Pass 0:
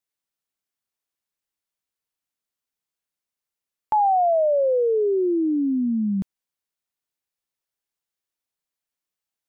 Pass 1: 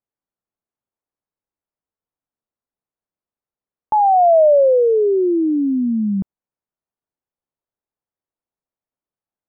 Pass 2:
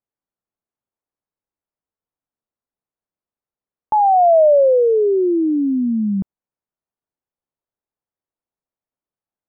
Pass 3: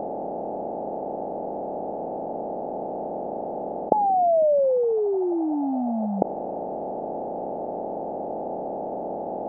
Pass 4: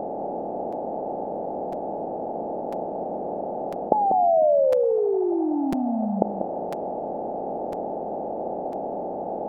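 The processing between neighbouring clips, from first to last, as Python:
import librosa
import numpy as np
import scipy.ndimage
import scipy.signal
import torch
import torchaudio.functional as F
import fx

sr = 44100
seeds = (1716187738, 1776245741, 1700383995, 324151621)

y1 = scipy.signal.sosfilt(scipy.signal.butter(2, 1000.0, 'lowpass', fs=sr, output='sos'), x)
y1 = fx.dynamic_eq(y1, sr, hz=620.0, q=1.9, threshold_db=-34.0, ratio=4.0, max_db=5)
y1 = F.gain(torch.from_numpy(y1), 4.0).numpy()
y2 = y1
y3 = fx.bin_compress(y2, sr, power=0.2)
y3 = F.gain(torch.from_numpy(y3), -10.0).numpy()
y4 = y3 + 10.0 ** (-7.0 / 20.0) * np.pad(y3, (int(192 * sr / 1000.0), 0))[:len(y3)]
y4 = fx.buffer_crackle(y4, sr, first_s=0.72, period_s=1.0, block=256, kind='repeat')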